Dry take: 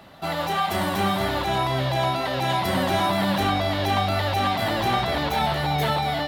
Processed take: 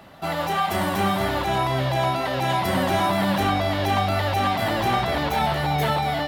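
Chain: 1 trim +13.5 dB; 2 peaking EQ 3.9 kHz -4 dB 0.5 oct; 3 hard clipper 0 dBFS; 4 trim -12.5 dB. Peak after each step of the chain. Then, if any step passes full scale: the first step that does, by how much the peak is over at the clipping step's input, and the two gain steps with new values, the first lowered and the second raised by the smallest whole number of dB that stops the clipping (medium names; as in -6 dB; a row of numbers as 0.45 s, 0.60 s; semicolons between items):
+3.0 dBFS, +3.0 dBFS, 0.0 dBFS, -12.5 dBFS; step 1, 3.0 dB; step 1 +10.5 dB, step 4 -9.5 dB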